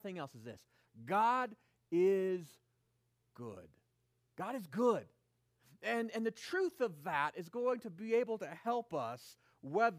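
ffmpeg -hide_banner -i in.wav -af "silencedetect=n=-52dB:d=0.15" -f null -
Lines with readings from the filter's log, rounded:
silence_start: 0.55
silence_end: 0.97 | silence_duration: 0.42
silence_start: 1.54
silence_end: 1.92 | silence_duration: 0.38
silence_start: 2.52
silence_end: 3.36 | silence_duration: 0.85
silence_start: 3.65
silence_end: 4.38 | silence_duration: 0.73
silence_start: 5.04
silence_end: 5.83 | silence_duration: 0.79
silence_start: 9.33
silence_end: 9.63 | silence_duration: 0.31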